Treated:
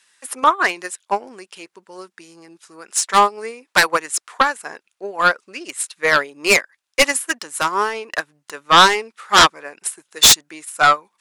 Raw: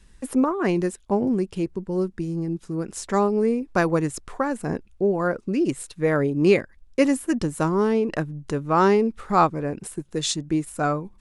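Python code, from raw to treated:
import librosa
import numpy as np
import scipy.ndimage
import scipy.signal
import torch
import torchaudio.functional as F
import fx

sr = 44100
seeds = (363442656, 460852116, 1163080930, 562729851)

y = scipy.signal.sosfilt(scipy.signal.butter(2, 1200.0, 'highpass', fs=sr, output='sos'), x)
y = fx.fold_sine(y, sr, drive_db=13, ceiling_db=-10.0)
y = fx.upward_expand(y, sr, threshold_db=-24.0, expansion=2.5)
y = y * 10.0 ** (6.0 / 20.0)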